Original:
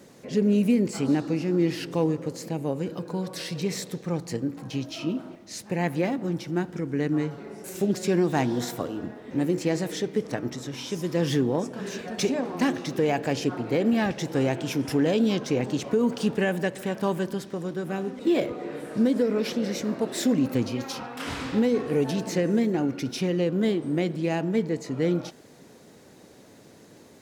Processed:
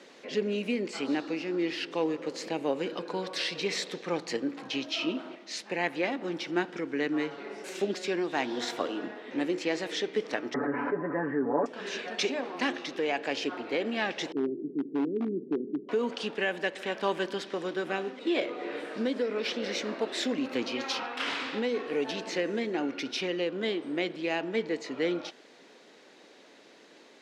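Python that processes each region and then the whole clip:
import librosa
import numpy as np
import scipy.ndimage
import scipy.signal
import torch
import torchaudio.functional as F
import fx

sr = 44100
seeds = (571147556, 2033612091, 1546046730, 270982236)

y = fx.chain(x, sr, fx.ellip_lowpass(hz=1700.0, order=4, stop_db=50),
    fx.comb(ms=7.0, depth=0.91),
    fx.env_flatten(amount_pct=70), at=(10.54, 11.66))
y = fx.chain(y, sr, fx.cheby1_bandpass(low_hz=140.0, high_hz=410.0, order=4),
    fx.overload_stage(gain_db=18.5), at=(14.32, 15.89))
y = scipy.signal.sosfilt(scipy.signal.cheby1(2, 1.0, [290.0, 3200.0], 'bandpass', fs=sr, output='sos'), y)
y = fx.tilt_eq(y, sr, slope=3.0)
y = fx.rider(y, sr, range_db=4, speed_s=0.5)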